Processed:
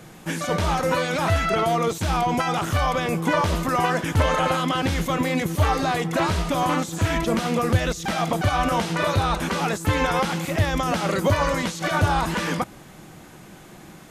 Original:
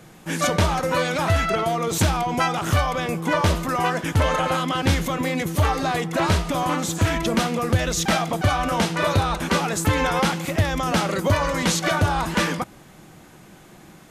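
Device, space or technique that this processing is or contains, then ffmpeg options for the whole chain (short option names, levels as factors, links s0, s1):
de-esser from a sidechain: -filter_complex "[0:a]asplit=2[s0][s1];[s1]highpass=4700,apad=whole_len=621899[s2];[s0][s2]sidechaincompress=threshold=0.0141:ratio=6:attack=1.5:release=30,volume=1.33"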